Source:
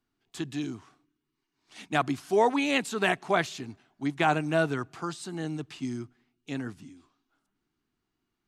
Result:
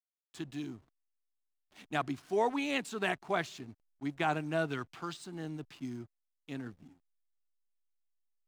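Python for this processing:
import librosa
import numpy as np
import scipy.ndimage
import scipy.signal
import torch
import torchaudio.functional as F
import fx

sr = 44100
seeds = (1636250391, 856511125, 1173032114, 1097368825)

y = fx.peak_eq(x, sr, hz=3000.0, db=9.0, octaves=1.3, at=(4.7, 5.17))
y = fx.backlash(y, sr, play_db=-44.5)
y = y * 10.0 ** (-7.0 / 20.0)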